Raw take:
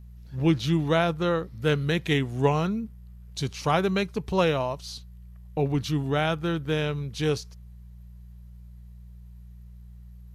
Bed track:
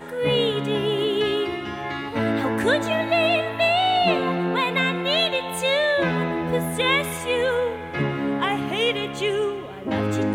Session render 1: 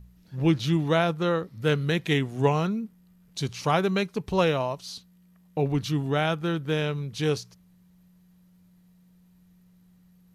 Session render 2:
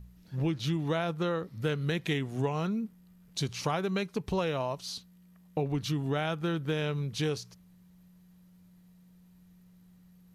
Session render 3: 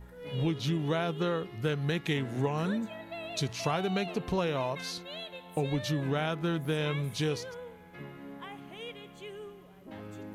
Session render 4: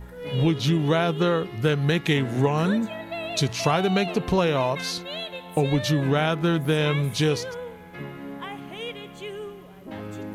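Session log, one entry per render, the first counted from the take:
de-hum 60 Hz, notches 2
compression 6:1, threshold -27 dBFS, peak gain reduction 10.5 dB
add bed track -21 dB
trim +8.5 dB

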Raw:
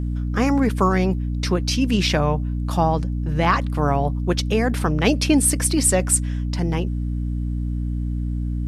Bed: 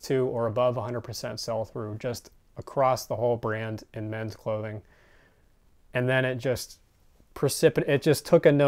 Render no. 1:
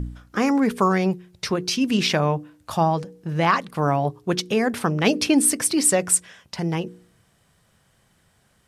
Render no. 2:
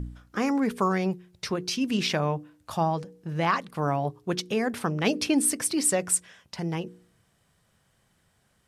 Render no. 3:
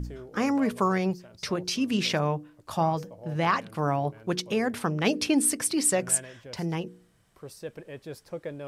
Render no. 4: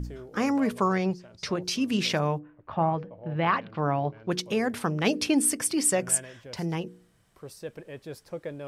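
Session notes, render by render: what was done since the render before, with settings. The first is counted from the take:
de-hum 60 Hz, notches 8
trim -5.5 dB
add bed -18 dB
0.78–1.62 s: low-pass 7.7 kHz; 2.38–4.30 s: low-pass 2.1 kHz -> 5 kHz 24 dB/octave; 5.38–6.27 s: band-stop 4 kHz, Q 9.6

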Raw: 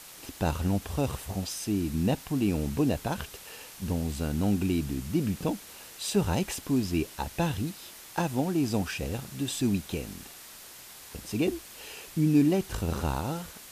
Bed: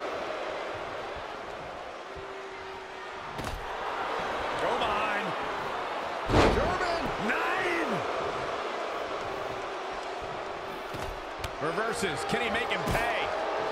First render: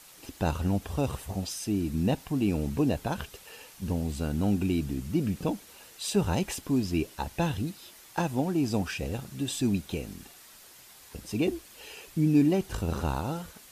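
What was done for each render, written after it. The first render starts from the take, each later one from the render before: noise reduction 6 dB, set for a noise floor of -48 dBFS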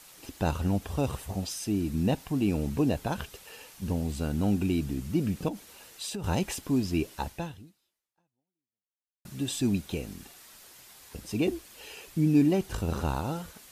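5.48–6.24 s: compression, threshold -32 dBFS; 7.27–9.25 s: fade out exponential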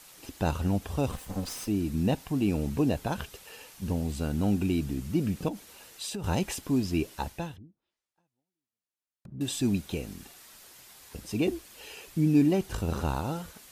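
1.11–1.68 s: comb filter that takes the minimum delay 3.9 ms; 7.56–9.41 s: low-pass that closes with the level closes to 370 Hz, closed at -49 dBFS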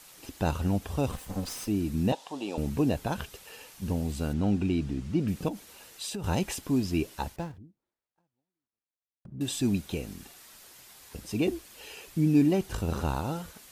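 2.12–2.58 s: cabinet simulation 480–9900 Hz, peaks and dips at 550 Hz +6 dB, 890 Hz +8 dB, 1.5 kHz -5 dB, 2.2 kHz -7 dB, 3.5 kHz +6 dB, 9.3 kHz -6 dB; 4.33–5.28 s: distance through air 76 m; 7.36–9.35 s: median filter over 15 samples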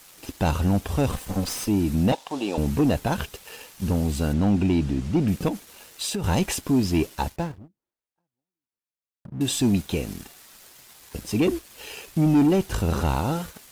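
waveshaping leveller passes 2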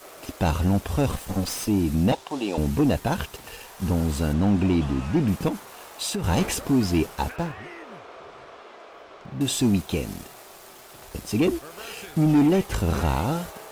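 add bed -12 dB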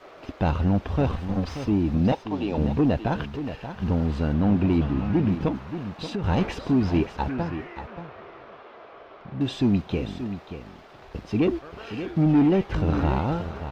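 distance through air 250 m; delay 581 ms -10.5 dB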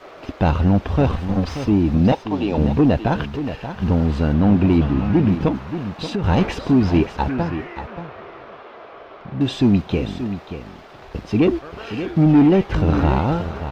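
trim +6 dB

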